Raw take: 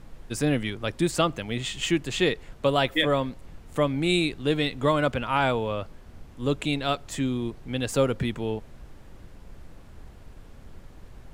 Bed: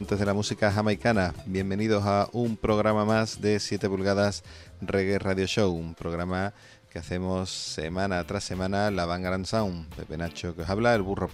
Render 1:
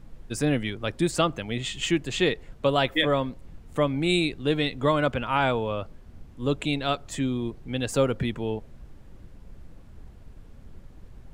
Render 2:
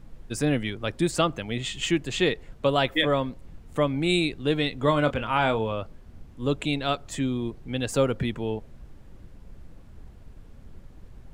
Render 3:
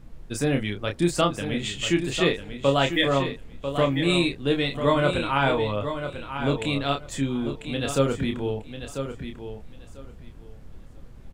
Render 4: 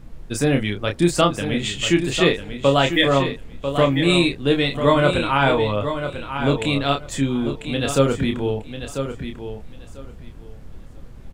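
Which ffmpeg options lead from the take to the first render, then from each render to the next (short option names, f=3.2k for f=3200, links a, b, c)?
-af "afftdn=nr=6:nf=-47"
-filter_complex "[0:a]asettb=1/sr,asplit=3[a][b][c];[a]atrim=end=4.854[d];[b]atrim=start=4.85:end=5.72,asetpts=PTS-STARTPTS,afade=t=in:d=0.004:c=qsin,afade=t=out:st=0.866:d=0.004:c=qsin,asplit=2[e][f];[f]adelay=27,volume=-10dB[g];[e][g]amix=inputs=2:normalize=0,atrim=end_sample=38367[h];[c]atrim=start=5.716[i];[d][h]acrossfade=d=0.004:c1=hsin:c2=qsin[j];[j][i]acrossfade=d=0.004:c1=qsin:c2=hsin"
-filter_complex "[0:a]asplit=2[a][b];[b]adelay=29,volume=-5.5dB[c];[a][c]amix=inputs=2:normalize=0,asplit=2[d][e];[e]aecho=0:1:994|1988|2982:0.355|0.0639|0.0115[f];[d][f]amix=inputs=2:normalize=0"
-af "volume=5dB,alimiter=limit=-3dB:level=0:latency=1"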